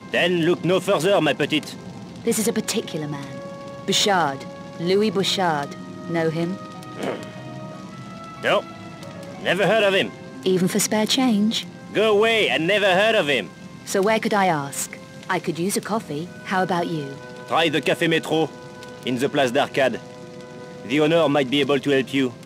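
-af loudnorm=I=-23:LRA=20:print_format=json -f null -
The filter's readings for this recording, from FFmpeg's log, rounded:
"input_i" : "-21.0",
"input_tp" : "-5.7",
"input_lra" : "4.4",
"input_thresh" : "-32.0",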